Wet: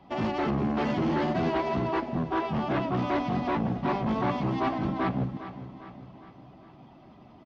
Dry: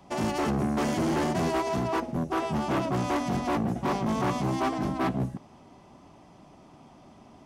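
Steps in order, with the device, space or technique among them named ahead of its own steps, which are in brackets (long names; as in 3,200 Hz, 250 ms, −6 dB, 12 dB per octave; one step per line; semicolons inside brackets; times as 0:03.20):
clip after many re-uploads (low-pass filter 4,100 Hz 24 dB per octave; spectral magnitudes quantised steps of 15 dB)
repeating echo 404 ms, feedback 52%, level −13 dB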